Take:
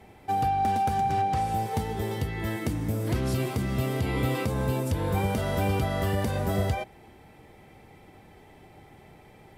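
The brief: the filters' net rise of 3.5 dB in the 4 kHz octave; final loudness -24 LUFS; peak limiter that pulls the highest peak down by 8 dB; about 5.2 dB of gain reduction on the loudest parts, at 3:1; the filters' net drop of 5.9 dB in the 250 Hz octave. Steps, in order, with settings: peaking EQ 250 Hz -8.5 dB; peaking EQ 4 kHz +4.5 dB; compression 3:1, threshold -30 dBFS; trim +10.5 dB; peak limiter -15.5 dBFS

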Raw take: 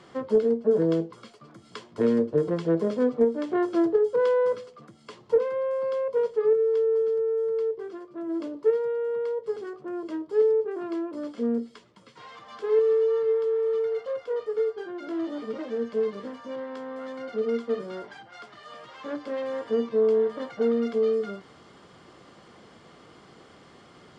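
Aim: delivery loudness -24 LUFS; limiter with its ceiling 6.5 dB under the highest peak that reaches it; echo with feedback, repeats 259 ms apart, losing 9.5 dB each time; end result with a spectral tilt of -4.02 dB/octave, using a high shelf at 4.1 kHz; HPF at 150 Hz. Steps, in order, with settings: high-pass 150 Hz; treble shelf 4.1 kHz -4 dB; peak limiter -18.5 dBFS; feedback delay 259 ms, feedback 33%, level -9.5 dB; trim +3.5 dB

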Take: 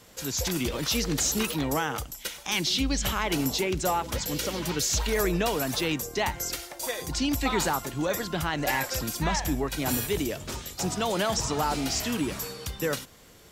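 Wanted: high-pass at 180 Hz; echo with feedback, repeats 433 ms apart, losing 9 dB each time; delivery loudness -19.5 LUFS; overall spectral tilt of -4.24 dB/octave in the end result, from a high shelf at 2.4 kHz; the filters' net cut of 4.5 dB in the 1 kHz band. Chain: high-pass 180 Hz; peaking EQ 1 kHz -4.5 dB; treble shelf 2.4 kHz -8 dB; feedback delay 433 ms, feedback 35%, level -9 dB; trim +12 dB

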